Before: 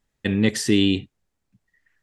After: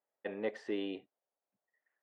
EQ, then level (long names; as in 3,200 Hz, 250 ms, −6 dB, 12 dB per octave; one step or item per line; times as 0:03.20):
four-pole ladder band-pass 720 Hz, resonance 45%
+3.0 dB